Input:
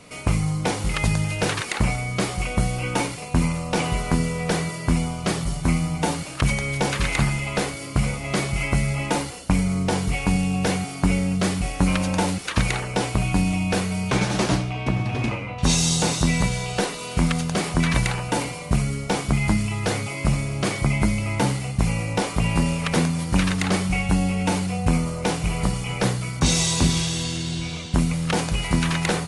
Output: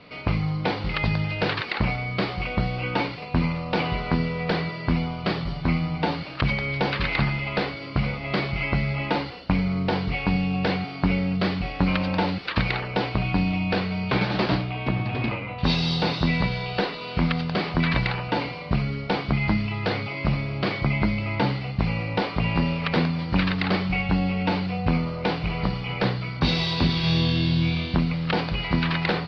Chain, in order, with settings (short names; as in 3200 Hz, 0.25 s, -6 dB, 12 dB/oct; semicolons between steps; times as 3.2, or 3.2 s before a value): elliptic low-pass 4600 Hz, stop band 40 dB; low shelf 62 Hz -7 dB; 27.01–27.97 flutter echo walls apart 4.2 m, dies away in 0.45 s